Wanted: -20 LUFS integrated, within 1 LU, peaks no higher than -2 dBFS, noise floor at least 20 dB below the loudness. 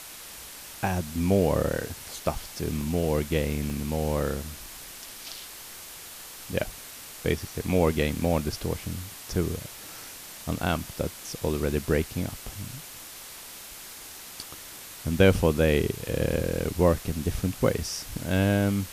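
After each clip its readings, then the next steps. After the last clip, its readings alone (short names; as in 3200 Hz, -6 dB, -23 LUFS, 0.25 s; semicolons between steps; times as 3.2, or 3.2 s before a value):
dropouts 6; longest dropout 1.5 ms; noise floor -43 dBFS; noise floor target -48 dBFS; loudness -27.5 LUFS; peak -6.5 dBFS; loudness target -20.0 LUFS
-> interpolate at 2.81/3.7/4.66/8.25/15.34/17.68, 1.5 ms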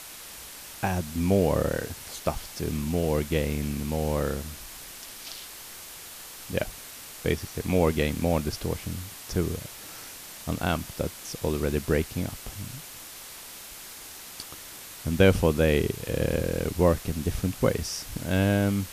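dropouts 0; noise floor -43 dBFS; noise floor target -48 dBFS
-> noise print and reduce 6 dB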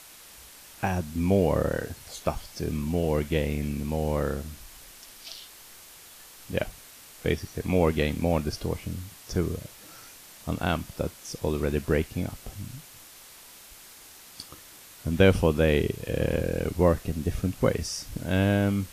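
noise floor -49 dBFS; loudness -27.5 LUFS; peak -6.5 dBFS; loudness target -20.0 LUFS
-> gain +7.5 dB; limiter -2 dBFS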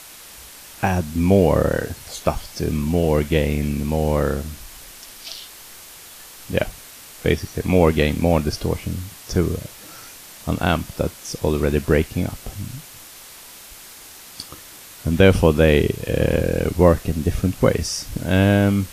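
loudness -20.5 LUFS; peak -2.0 dBFS; noise floor -42 dBFS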